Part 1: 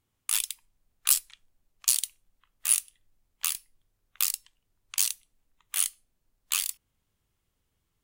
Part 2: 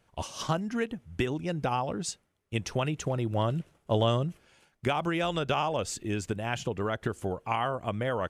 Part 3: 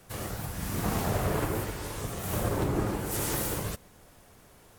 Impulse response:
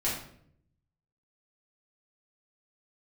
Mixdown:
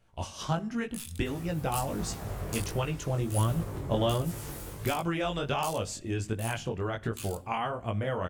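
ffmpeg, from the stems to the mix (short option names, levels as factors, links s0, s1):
-filter_complex "[0:a]adelay=650,volume=0.211,asplit=2[s0][s1];[s1]volume=0.119[s2];[1:a]volume=1,asplit=2[s3][s4];[s4]volume=0.0631[s5];[2:a]adelay=1150,volume=0.376[s6];[3:a]atrim=start_sample=2205[s7];[s2][s5]amix=inputs=2:normalize=0[s8];[s8][s7]afir=irnorm=-1:irlink=0[s9];[s0][s3][s6][s9]amix=inputs=4:normalize=0,lowshelf=f=82:g=10,flanger=delay=17.5:depth=4.9:speed=1.4"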